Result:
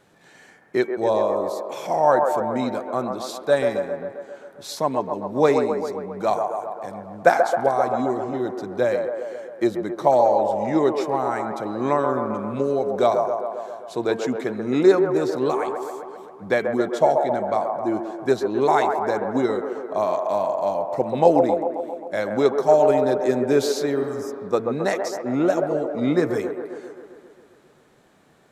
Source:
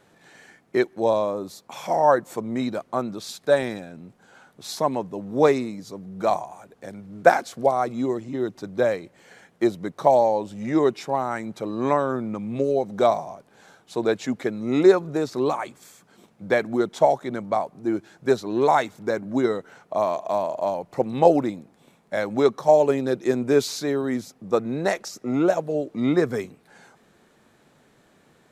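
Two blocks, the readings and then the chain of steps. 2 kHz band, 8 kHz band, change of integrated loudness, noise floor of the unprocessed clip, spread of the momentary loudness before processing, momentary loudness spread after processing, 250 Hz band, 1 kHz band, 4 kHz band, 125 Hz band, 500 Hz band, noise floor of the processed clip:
+0.5 dB, can't be measured, +1.5 dB, −60 dBFS, 13 LU, 12 LU, +0.5 dB, +2.0 dB, 0.0 dB, 0.0 dB, +2.0 dB, −53 dBFS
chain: hum removal 226.8 Hz, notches 15
healed spectral selection 0:24.02–0:24.44, 220–4,700 Hz both
delay with a band-pass on its return 133 ms, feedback 67%, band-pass 730 Hz, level −4 dB

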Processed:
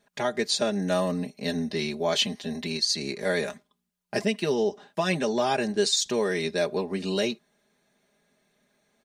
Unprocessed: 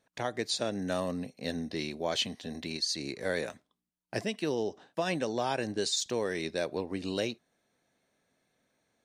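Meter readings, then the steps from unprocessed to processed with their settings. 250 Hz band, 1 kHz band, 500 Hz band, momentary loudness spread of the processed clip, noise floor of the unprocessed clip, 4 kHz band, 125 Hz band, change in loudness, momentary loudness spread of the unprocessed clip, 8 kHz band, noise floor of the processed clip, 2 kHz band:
+6.0 dB, +5.5 dB, +6.5 dB, 6 LU, −84 dBFS, +6.5 dB, +6.0 dB, +6.5 dB, 6 LU, +6.0 dB, −77 dBFS, +6.0 dB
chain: comb filter 4.9 ms, depth 82%
level +4 dB

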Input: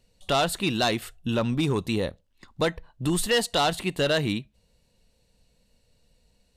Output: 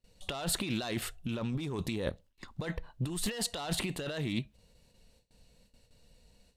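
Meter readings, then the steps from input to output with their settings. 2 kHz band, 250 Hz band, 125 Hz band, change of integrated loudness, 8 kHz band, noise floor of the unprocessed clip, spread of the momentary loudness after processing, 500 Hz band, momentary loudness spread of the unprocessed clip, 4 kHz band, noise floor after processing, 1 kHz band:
−11.0 dB, −8.0 dB, −6.5 dB, −9.5 dB, −4.0 dB, −68 dBFS, 8 LU, −13.0 dB, 7 LU, −10.0 dB, −70 dBFS, −15.0 dB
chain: compressor whose output falls as the input rises −31 dBFS, ratio −1
noise gate with hold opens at −49 dBFS
highs frequency-modulated by the lows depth 0.16 ms
level −3.5 dB

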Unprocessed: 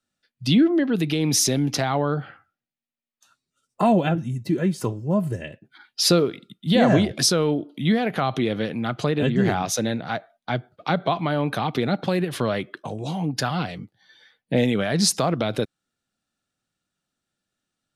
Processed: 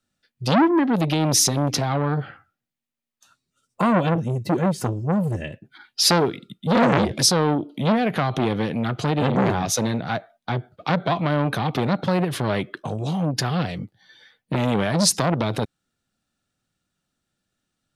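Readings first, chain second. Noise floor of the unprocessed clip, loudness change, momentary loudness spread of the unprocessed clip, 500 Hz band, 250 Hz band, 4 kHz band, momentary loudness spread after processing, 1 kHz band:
below −85 dBFS, +1.0 dB, 11 LU, 0.0 dB, 0.0 dB, +1.0 dB, 12 LU, +3.0 dB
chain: low-shelf EQ 170 Hz +6.5 dB
saturating transformer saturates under 1,300 Hz
level +2.5 dB

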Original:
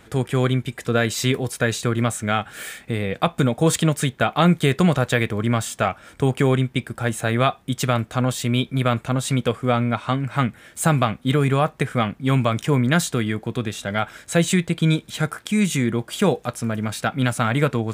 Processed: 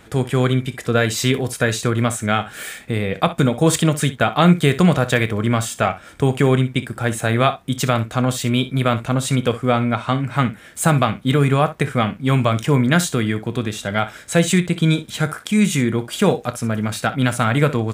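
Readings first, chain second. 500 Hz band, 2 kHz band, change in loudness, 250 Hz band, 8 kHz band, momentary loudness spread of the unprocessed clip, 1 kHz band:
+2.5 dB, +2.5 dB, +2.5 dB, +3.0 dB, +2.5 dB, 7 LU, +2.5 dB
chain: ambience of single reflections 28 ms −16 dB, 62 ms −15 dB
level +2.5 dB

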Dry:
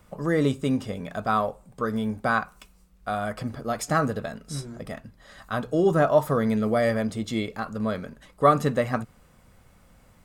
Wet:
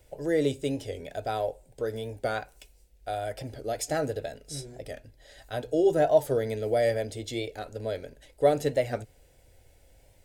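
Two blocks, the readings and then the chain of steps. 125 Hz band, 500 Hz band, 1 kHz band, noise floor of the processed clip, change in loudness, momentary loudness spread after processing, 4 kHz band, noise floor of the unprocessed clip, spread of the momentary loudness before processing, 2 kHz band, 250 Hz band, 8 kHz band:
−7.0 dB, −0.5 dB, −7.5 dB, −60 dBFS, −3.5 dB, 15 LU, −1.0 dB, −58 dBFS, 14 LU, −8.0 dB, −7.5 dB, 0.0 dB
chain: phaser with its sweep stopped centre 480 Hz, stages 4
wow of a warped record 45 rpm, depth 100 cents

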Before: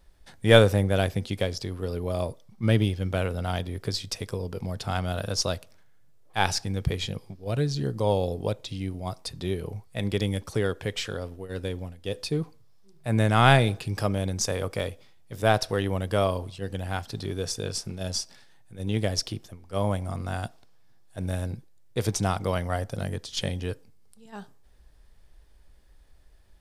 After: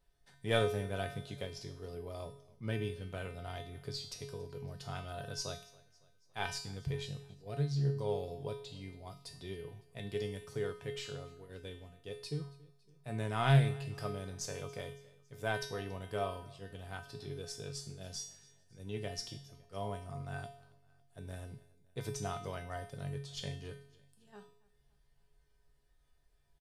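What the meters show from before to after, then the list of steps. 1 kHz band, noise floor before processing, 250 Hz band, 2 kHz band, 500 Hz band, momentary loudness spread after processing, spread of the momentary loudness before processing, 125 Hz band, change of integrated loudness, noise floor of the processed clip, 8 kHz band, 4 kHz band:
−13.0 dB, −53 dBFS, −13.5 dB, −12.5 dB, −12.5 dB, 16 LU, 12 LU, −10.5 dB, −12.0 dB, −69 dBFS, −12.0 dB, −12.5 dB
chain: mains-hum notches 60/120/180 Hz
tuned comb filter 140 Hz, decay 0.55 s, harmonics odd, mix 90%
repeating echo 279 ms, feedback 52%, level −23 dB
highs frequency-modulated by the lows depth 0.13 ms
level +2.5 dB

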